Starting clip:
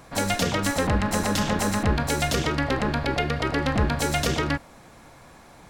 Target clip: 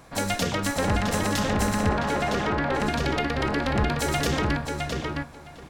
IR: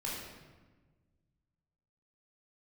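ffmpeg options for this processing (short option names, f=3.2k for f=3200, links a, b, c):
-filter_complex "[0:a]asplit=2[a][b];[b]adelay=662,lowpass=f=3.9k:p=1,volume=-3dB,asplit=2[c][d];[d]adelay=662,lowpass=f=3.9k:p=1,volume=0.17,asplit=2[e][f];[f]adelay=662,lowpass=f=3.9k:p=1,volume=0.17[g];[a][c][e][g]amix=inputs=4:normalize=0,asettb=1/sr,asplit=3[h][i][j];[h]atrim=end=1.894[k];[i]atrim=start=1.89:end=2.8,asetpts=PTS-STARTPTS,afade=t=in:d=0.004:c=qsin,afade=t=out:st=0.906:d=0.004:c=qsin,asplit=2[l][m];[m]highpass=f=720:p=1,volume=12dB,asoftclip=type=tanh:threshold=-10dB[n];[l][n]amix=inputs=2:normalize=0,lowpass=f=1.2k:p=1,volume=-6dB[o];[j]atrim=start=2.796[p];[k][o]acrossfade=d=0.004:c1=hsin:c2=qsin[q];[q][p]acrossfade=d=0.004:c1=qsin:c2=hsin,volume=-2dB"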